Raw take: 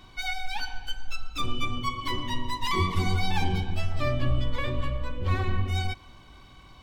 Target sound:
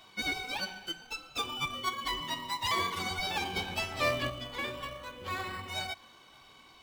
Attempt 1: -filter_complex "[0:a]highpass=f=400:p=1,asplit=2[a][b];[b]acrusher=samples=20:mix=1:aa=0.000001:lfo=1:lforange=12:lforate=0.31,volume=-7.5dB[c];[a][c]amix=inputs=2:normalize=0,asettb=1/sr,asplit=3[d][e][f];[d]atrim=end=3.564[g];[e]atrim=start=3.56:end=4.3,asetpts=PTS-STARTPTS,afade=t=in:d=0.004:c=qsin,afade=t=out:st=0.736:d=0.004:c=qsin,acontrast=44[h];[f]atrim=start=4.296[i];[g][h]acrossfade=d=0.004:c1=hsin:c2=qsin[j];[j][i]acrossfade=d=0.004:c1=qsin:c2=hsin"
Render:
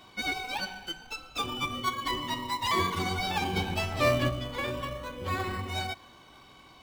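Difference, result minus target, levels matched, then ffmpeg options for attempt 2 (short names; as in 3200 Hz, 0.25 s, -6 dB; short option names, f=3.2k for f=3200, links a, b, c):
500 Hz band +3.0 dB
-filter_complex "[0:a]highpass=f=1.4k:p=1,asplit=2[a][b];[b]acrusher=samples=20:mix=1:aa=0.000001:lfo=1:lforange=12:lforate=0.31,volume=-7.5dB[c];[a][c]amix=inputs=2:normalize=0,asettb=1/sr,asplit=3[d][e][f];[d]atrim=end=3.564[g];[e]atrim=start=3.56:end=4.3,asetpts=PTS-STARTPTS,afade=t=in:d=0.004:c=qsin,afade=t=out:st=0.736:d=0.004:c=qsin,acontrast=44[h];[f]atrim=start=4.296[i];[g][h]acrossfade=d=0.004:c1=hsin:c2=qsin[j];[j][i]acrossfade=d=0.004:c1=qsin:c2=hsin"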